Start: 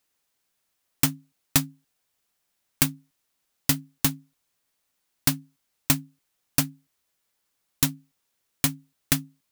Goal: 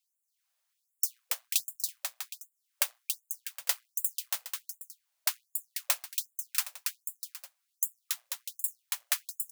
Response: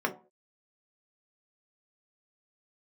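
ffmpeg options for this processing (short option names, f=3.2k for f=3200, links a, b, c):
-af "acrusher=bits=3:mode=log:mix=0:aa=0.000001,aecho=1:1:280|490|647.5|765.6|854.2:0.631|0.398|0.251|0.158|0.1,afftfilt=real='re*gte(b*sr/1024,470*pow(7000/470,0.5+0.5*sin(2*PI*1.3*pts/sr)))':imag='im*gte(b*sr/1024,470*pow(7000/470,0.5+0.5*sin(2*PI*1.3*pts/sr)))':win_size=1024:overlap=0.75,volume=-6dB"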